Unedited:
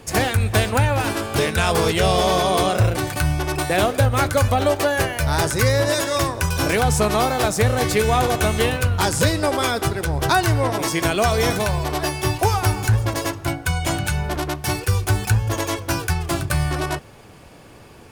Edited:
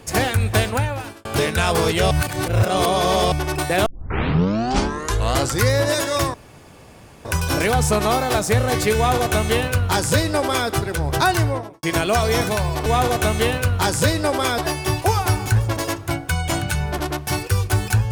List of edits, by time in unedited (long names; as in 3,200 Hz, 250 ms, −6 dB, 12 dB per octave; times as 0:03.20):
0:00.60–0:01.25: fade out
0:02.11–0:03.32: reverse
0:03.86: tape start 1.84 s
0:06.34: splice in room tone 0.91 s
0:08.05–0:09.77: duplicate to 0:11.95
0:10.46–0:10.92: fade out and dull